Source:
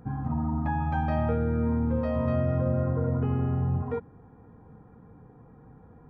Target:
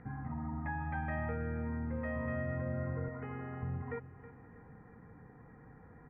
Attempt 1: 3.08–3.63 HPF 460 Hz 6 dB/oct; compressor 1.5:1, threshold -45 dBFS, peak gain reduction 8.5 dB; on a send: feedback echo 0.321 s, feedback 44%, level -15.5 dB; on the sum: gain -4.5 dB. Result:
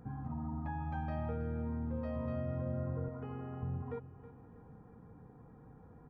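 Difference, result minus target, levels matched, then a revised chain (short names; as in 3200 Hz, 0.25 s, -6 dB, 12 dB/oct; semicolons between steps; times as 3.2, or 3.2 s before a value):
2000 Hz band -10.5 dB
3.08–3.63 HPF 460 Hz 6 dB/oct; compressor 1.5:1, threshold -45 dBFS, peak gain reduction 8.5 dB; synth low-pass 2000 Hz, resonance Q 9; on a send: feedback echo 0.321 s, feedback 44%, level -15.5 dB; on the sum: gain -4.5 dB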